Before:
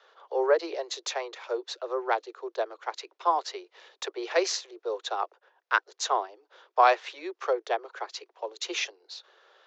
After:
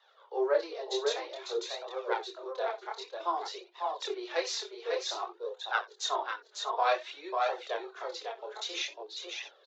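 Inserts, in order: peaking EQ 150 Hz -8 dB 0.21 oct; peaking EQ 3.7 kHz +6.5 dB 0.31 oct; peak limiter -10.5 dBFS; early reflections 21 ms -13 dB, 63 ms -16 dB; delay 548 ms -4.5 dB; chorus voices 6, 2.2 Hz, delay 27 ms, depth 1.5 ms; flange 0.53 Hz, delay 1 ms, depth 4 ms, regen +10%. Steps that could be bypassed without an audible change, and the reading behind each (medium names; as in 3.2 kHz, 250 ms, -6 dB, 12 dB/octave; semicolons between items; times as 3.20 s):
peaking EQ 150 Hz: input has nothing below 300 Hz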